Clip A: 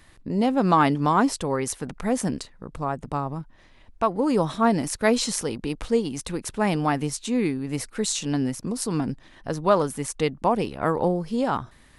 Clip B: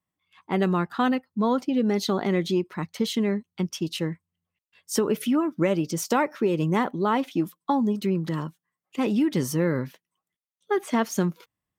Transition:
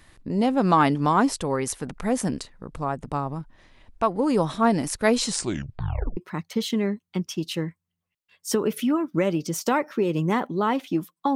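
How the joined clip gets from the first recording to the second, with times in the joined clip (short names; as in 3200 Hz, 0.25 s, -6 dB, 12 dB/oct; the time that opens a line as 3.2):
clip A
5.27 tape stop 0.90 s
6.17 switch to clip B from 2.61 s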